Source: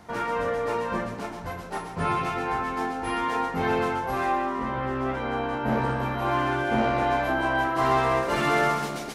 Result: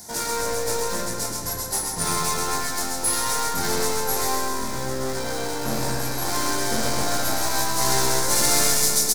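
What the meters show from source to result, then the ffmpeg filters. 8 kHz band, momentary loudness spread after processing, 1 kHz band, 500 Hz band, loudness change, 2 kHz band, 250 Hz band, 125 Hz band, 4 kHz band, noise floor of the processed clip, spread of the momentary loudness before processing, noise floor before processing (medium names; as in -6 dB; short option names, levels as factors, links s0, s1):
+25.0 dB, 9 LU, -2.0 dB, -1.0 dB, +3.5 dB, -1.0 dB, -2.0 dB, -0.5 dB, +12.5 dB, -29 dBFS, 7 LU, -37 dBFS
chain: -filter_complex "[0:a]asuperstop=centerf=1200:order=20:qfactor=5.8,aeval=exprs='clip(val(0),-1,0.02)':c=same,asplit=2[s0][s1];[s1]aecho=0:1:130|260|390|520|650|780|910:0.398|0.231|0.134|0.0777|0.0451|0.0261|0.0152[s2];[s0][s2]amix=inputs=2:normalize=0,aexciter=amount=12.3:drive=7.1:freq=4400,asplit=2[s3][s4];[s4]adelay=105,lowpass=f=2000:p=1,volume=0.562,asplit=2[s5][s6];[s6]adelay=105,lowpass=f=2000:p=1,volume=0.53,asplit=2[s7][s8];[s8]adelay=105,lowpass=f=2000:p=1,volume=0.53,asplit=2[s9][s10];[s10]adelay=105,lowpass=f=2000:p=1,volume=0.53,asplit=2[s11][s12];[s12]adelay=105,lowpass=f=2000:p=1,volume=0.53,asplit=2[s13][s14];[s14]adelay=105,lowpass=f=2000:p=1,volume=0.53,asplit=2[s15][s16];[s16]adelay=105,lowpass=f=2000:p=1,volume=0.53[s17];[s5][s7][s9][s11][s13][s15][s17]amix=inputs=7:normalize=0[s18];[s3][s18]amix=inputs=2:normalize=0"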